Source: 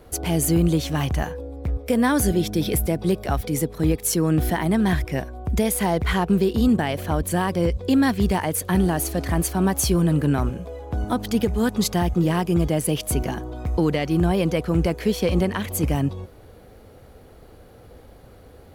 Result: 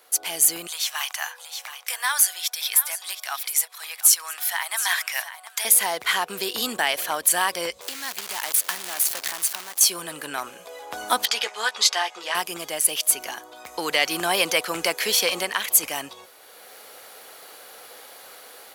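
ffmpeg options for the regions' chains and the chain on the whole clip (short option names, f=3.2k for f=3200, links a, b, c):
-filter_complex "[0:a]asettb=1/sr,asplit=3[a][b][c];[a]atrim=end=0.674[d];[b]atrim=start=0.67:end=5.65,asetpts=PTS-STARTPTS,afade=t=in:d=0.004:c=qsin,afade=t=out:st=4.976:d=0.004:c=qsin,highpass=f=840:w=0.5412,highpass=f=840:w=1.3066,aecho=1:1:722:0.188,atrim=end_sample=219618[e];[c]atrim=start=5.646[f];[d][e]acrossfade=d=0.004:c1=hsin:c2=qsin[g];[g][f]acrossfade=d=0.004:c1=qsin:c2=hsin,asettb=1/sr,asplit=3[h][i][j];[h]atrim=end=7.814[k];[i]atrim=start=7.81:end=9.81,asetpts=PTS-STARTPTS,afade=t=in:d=0.004:c=qsin,afade=t=out:st=1.996:d=0.004:c=qsin,acrusher=bits=5:dc=4:mix=0:aa=0.000001,acompressor=threshold=-29dB:ratio=20:attack=3.2:release=140:knee=1:detection=peak[l];[j]atrim=start=9.806[m];[k][l]acrossfade=d=0.004:c1=hsin:c2=qsin[n];[n][m]acrossfade=d=0.004:c1=qsin:c2=hsin,asettb=1/sr,asplit=3[o][p][q];[o]atrim=end=11.254[r];[p]atrim=start=11.25:end=12.35,asetpts=PTS-STARTPTS,afade=t=in:d=0.004:c=qsin,afade=t=out:st=1.096:d=0.004:c=qsin,highpass=610,lowpass=5.2k,asplit=2[s][t];[t]adelay=14,volume=-8dB[u];[s][u]amix=inputs=2:normalize=0,atrim=end_sample=48510[v];[q]atrim=start=12.346[w];[r][v]acrossfade=d=0.004:c1=hsin:c2=qsin[x];[x][w]acrossfade=d=0.004:c1=qsin:c2=hsin,highpass=900,highshelf=f=2.9k:g=9.5,dynaudnorm=f=390:g=3:m=11.5dB,volume=-2dB"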